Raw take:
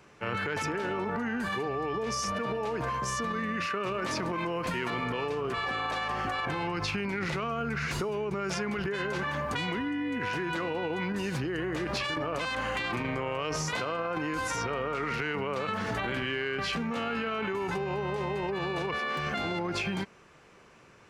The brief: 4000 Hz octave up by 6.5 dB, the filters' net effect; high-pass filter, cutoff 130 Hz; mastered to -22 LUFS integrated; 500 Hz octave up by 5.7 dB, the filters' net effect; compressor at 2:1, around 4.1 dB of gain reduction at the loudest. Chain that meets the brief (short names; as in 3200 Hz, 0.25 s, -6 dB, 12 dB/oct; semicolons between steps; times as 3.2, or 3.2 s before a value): HPF 130 Hz; bell 500 Hz +7 dB; bell 4000 Hz +9 dB; compressor 2:1, threshold -31 dBFS; gain +9.5 dB